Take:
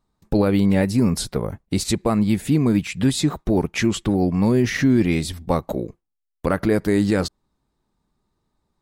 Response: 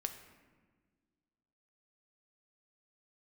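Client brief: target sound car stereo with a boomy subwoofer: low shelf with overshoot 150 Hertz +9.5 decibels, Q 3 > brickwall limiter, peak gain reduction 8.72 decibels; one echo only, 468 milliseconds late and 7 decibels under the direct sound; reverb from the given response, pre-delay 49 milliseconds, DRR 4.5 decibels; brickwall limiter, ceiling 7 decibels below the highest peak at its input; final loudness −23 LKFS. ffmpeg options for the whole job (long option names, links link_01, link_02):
-filter_complex "[0:a]alimiter=limit=-14.5dB:level=0:latency=1,aecho=1:1:468:0.447,asplit=2[link_01][link_02];[1:a]atrim=start_sample=2205,adelay=49[link_03];[link_02][link_03]afir=irnorm=-1:irlink=0,volume=-4dB[link_04];[link_01][link_04]amix=inputs=2:normalize=0,lowshelf=frequency=150:width_type=q:width=3:gain=9.5,volume=-2.5dB,alimiter=limit=-13.5dB:level=0:latency=1"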